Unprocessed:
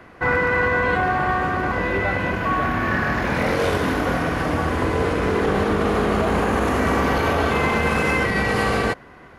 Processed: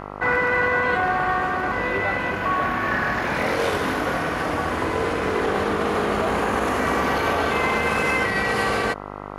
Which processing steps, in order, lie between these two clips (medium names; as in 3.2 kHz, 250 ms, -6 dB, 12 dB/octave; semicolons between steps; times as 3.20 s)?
bass shelf 250 Hz -9.5 dB; mains buzz 50 Hz, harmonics 27, -35 dBFS 0 dB/octave